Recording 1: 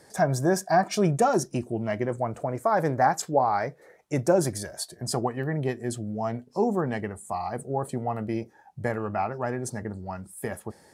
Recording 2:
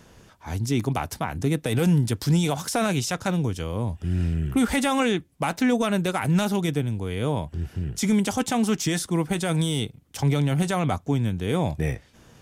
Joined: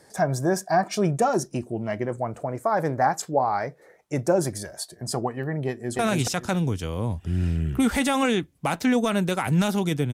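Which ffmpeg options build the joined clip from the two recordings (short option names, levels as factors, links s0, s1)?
-filter_complex "[0:a]apad=whole_dur=10.13,atrim=end=10.13,atrim=end=5.992[s0];[1:a]atrim=start=2.758:end=6.9[s1];[s0][s1]acrossfade=d=0.004:c1=hsin:c2=hsin,asplit=2[s2][s3];[s3]afade=t=in:st=5.68:d=0.01,afade=t=out:st=5.99:d=0.01,aecho=0:1:280|560|840:0.944061|0.188812|0.0377624[s4];[s2][s4]amix=inputs=2:normalize=0"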